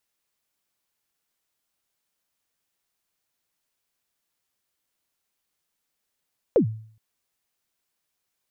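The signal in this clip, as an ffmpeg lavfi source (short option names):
-f lavfi -i "aevalsrc='0.266*pow(10,-3*t/0.53)*sin(2*PI*(560*0.098/log(110/560)*(exp(log(110/560)*min(t,0.098)/0.098)-1)+110*max(t-0.098,0)))':d=0.42:s=44100"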